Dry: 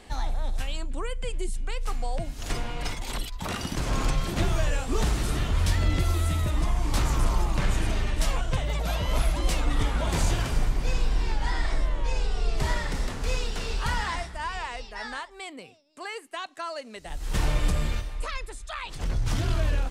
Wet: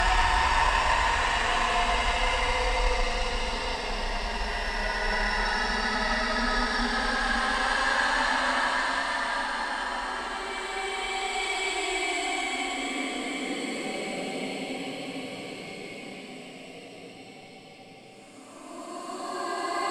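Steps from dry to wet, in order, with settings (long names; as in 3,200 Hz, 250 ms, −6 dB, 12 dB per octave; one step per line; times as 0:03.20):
four-comb reverb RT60 0.86 s, combs from 30 ms, DRR −9 dB
extreme stretch with random phases 14×, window 0.10 s, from 0:14.65
harmonic generator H 4 −22 dB, 6 −34 dB, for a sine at −9 dBFS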